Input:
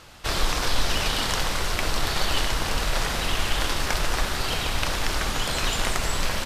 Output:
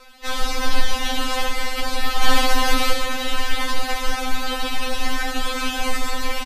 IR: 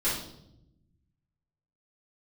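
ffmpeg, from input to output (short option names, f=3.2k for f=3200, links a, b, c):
-filter_complex "[0:a]equalizer=f=7.6k:t=o:w=1.7:g=-5,asplit=3[a][b][c];[a]afade=t=out:st=2.22:d=0.02[d];[b]acontrast=54,afade=t=in:st=2.22:d=0.02,afade=t=out:st=2.93:d=0.02[e];[c]afade=t=in:st=2.93:d=0.02[f];[d][e][f]amix=inputs=3:normalize=0,aecho=1:1:70|188:0.316|0.133,asplit=2[g][h];[1:a]atrim=start_sample=2205,adelay=110[i];[h][i]afir=irnorm=-1:irlink=0,volume=-30dB[j];[g][j]amix=inputs=2:normalize=0,afftfilt=real='re*3.46*eq(mod(b,12),0)':imag='im*3.46*eq(mod(b,12),0)':win_size=2048:overlap=0.75,volume=4.5dB"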